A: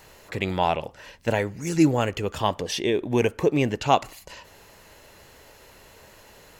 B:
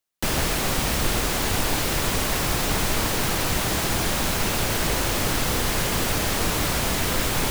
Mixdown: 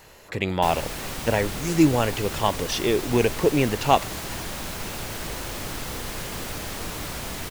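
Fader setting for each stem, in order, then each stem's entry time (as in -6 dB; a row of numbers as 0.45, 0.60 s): +1.0, -9.0 dB; 0.00, 0.40 s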